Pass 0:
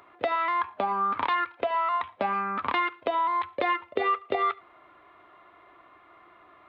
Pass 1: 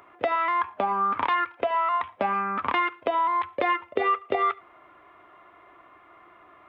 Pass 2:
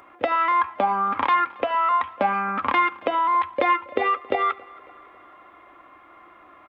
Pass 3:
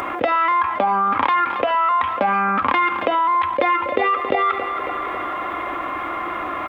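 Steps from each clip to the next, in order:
parametric band 4,100 Hz −8.5 dB 0.38 octaves; level +2 dB
comb filter 3.7 ms, depth 35%; repeating echo 274 ms, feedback 58%, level −24 dB; level +3 dB
envelope flattener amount 70%

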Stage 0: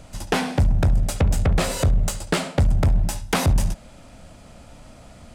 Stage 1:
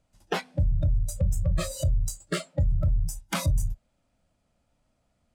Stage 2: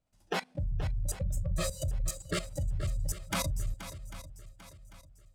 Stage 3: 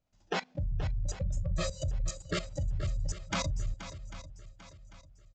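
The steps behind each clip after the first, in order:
noise reduction from a noise print of the clip's start 22 dB; level −5.5 dB
output level in coarse steps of 17 dB; feedback echo with a long and a short gap by turns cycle 795 ms, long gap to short 1.5 to 1, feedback 36%, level −12.5 dB; level +3.5 dB
downsampling to 16,000 Hz

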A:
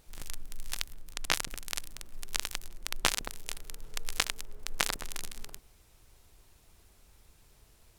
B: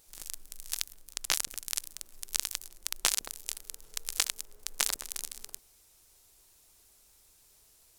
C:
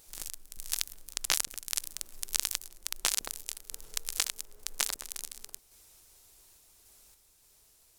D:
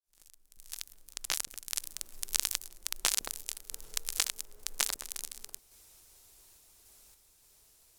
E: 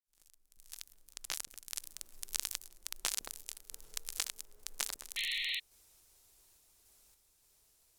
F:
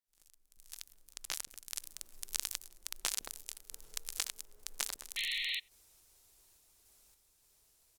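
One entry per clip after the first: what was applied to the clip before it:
bass and treble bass −8 dB, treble +11 dB; level −5 dB
in parallel at +1 dB: brickwall limiter −12 dBFS, peak gain reduction 10.5 dB; on the sum: sample-and-hold tremolo; level −2 dB
fade in at the beginning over 2.32 s
sound drawn into the spectrogram noise, 0:05.16–0:05.60, 1,800–4,300 Hz −30 dBFS; level −6.5 dB
far-end echo of a speakerphone 90 ms, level −29 dB

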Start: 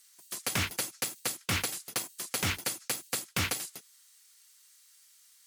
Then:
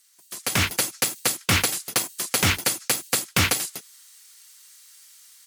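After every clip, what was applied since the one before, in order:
automatic gain control gain up to 10 dB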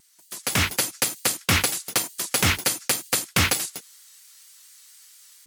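pitch vibrato 4.3 Hz 78 cents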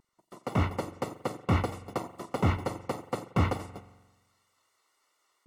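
soft clipping −12.5 dBFS, distortion −18 dB
Savitzky-Golay smoothing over 65 samples
spring reverb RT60 1.2 s, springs 44 ms, chirp 65 ms, DRR 13.5 dB
level +1 dB

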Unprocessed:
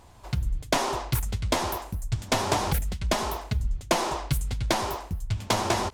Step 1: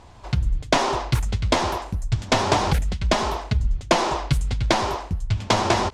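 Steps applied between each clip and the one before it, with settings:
low-pass filter 6,100 Hz 12 dB per octave
level +5.5 dB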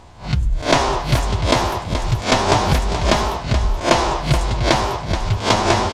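peak hold with a rise ahead of every peak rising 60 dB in 0.30 s
on a send: single-tap delay 427 ms −9 dB
on the sum: level +2.5 dB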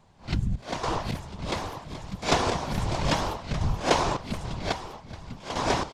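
random phases in short frames
sample-and-hold tremolo 3.6 Hz, depth 80%
level −7 dB

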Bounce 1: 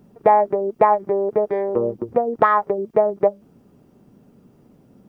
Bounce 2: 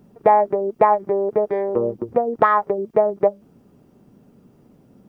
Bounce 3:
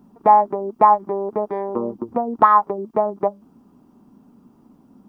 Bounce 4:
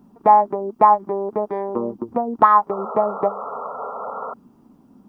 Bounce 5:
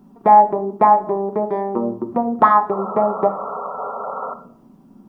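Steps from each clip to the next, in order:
no processing that can be heard
octave-band graphic EQ 125/250/500/1,000/2,000 Hz −7/+9/−8/+11/−6 dB; level −2.5 dB
sound drawn into the spectrogram noise, 0:02.70–0:04.34, 400–1,400 Hz −30 dBFS
rectangular room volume 940 cubic metres, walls furnished, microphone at 1.1 metres; level +1.5 dB

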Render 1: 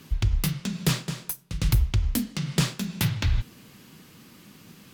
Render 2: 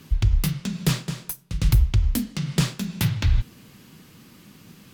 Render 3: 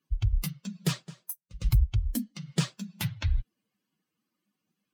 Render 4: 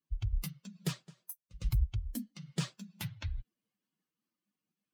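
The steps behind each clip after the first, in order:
low-shelf EQ 150 Hz +5 dB
spectral dynamics exaggerated over time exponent 2; level −3 dB
amplitude modulation by smooth noise, depth 60%; level −5 dB

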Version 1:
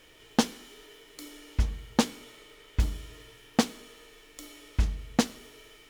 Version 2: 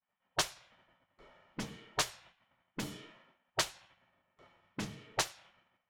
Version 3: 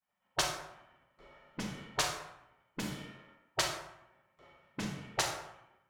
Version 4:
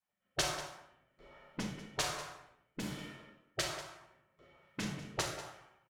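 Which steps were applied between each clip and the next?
low-pass that shuts in the quiet parts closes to 900 Hz, open at −21.5 dBFS; downward expander −49 dBFS; gate on every frequency bin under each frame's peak −15 dB weak; level −1 dB
convolution reverb RT60 0.85 s, pre-delay 28 ms, DRR 2 dB
rotating-speaker cabinet horn 1.2 Hz; single-tap delay 191 ms −14.5 dB; level +1.5 dB

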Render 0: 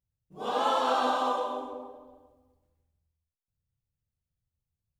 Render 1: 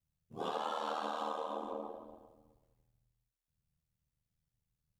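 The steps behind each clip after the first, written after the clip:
ring modulation 39 Hz
downward compressor, threshold −38 dBFS, peak gain reduction 13 dB
level +3 dB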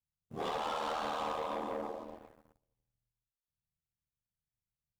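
leveller curve on the samples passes 3
level −5.5 dB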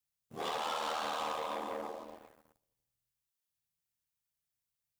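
spectral tilt +2 dB per octave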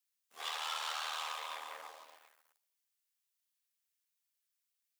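high-pass filter 1,500 Hz 12 dB per octave
level +2.5 dB

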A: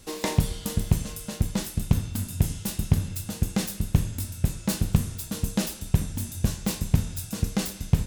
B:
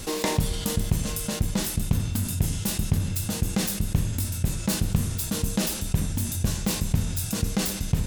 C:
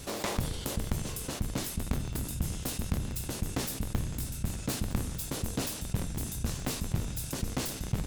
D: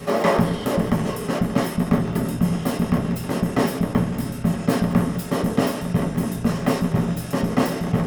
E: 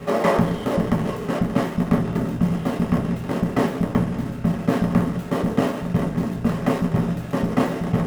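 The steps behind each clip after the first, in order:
envelope flattener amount 50%; level −3.5 dB
sub-harmonics by changed cycles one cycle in 3, inverted; level −7.5 dB
convolution reverb RT60 0.35 s, pre-delay 3 ms, DRR −4.5 dB
running median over 9 samples

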